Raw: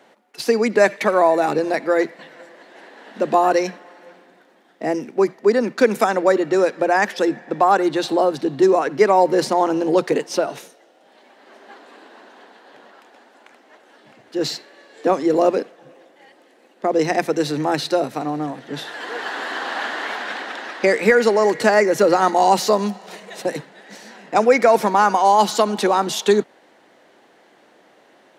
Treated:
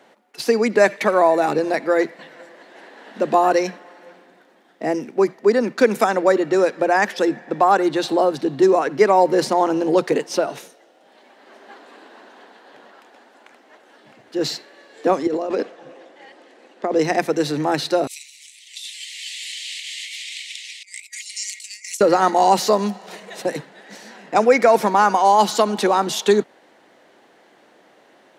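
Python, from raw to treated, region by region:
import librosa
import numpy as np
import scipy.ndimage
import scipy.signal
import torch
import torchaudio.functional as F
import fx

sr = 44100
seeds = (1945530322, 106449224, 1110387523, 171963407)

y = fx.chain(x, sr, fx.bandpass_edges(low_hz=190.0, high_hz=7600.0),
    fx.over_compress(threshold_db=-22.0, ratio=-1.0), at=(15.27, 16.96))
y = fx.chain(y, sr, fx.steep_highpass(hz=2100.0, slope=96),
    fx.over_compress(threshold_db=-36.0, ratio=-0.5),
    fx.peak_eq(hz=8200.0, db=13.0, octaves=0.94), at=(18.07, 22.01))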